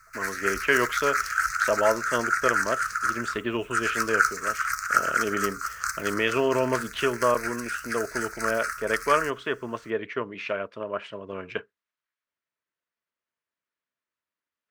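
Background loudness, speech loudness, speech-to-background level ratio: -28.0 LUFS, -28.5 LUFS, -0.5 dB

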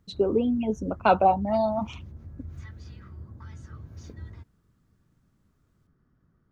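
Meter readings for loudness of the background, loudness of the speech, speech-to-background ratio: -44.5 LUFS, -24.5 LUFS, 20.0 dB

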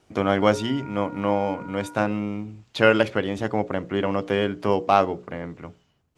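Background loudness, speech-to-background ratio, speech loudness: -43.0 LUFS, 19.5 dB, -23.5 LUFS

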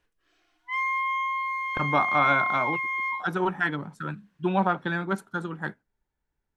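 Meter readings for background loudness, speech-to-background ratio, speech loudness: -27.0 LUFS, -1.0 dB, -28.0 LUFS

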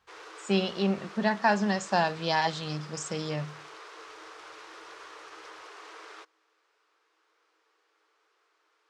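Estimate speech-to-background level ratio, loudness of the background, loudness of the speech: 17.0 dB, -46.0 LUFS, -29.0 LUFS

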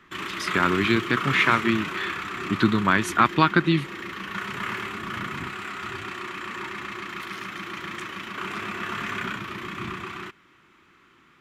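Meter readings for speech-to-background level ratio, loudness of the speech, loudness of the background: 9.0 dB, -22.5 LUFS, -31.5 LUFS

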